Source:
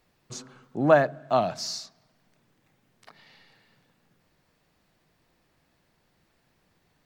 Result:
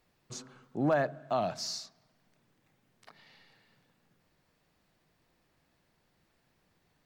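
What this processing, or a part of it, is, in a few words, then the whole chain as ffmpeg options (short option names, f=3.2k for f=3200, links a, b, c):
clipper into limiter: -af "asoftclip=type=hard:threshold=-8.5dB,alimiter=limit=-15.5dB:level=0:latency=1:release=55,volume=-4dB"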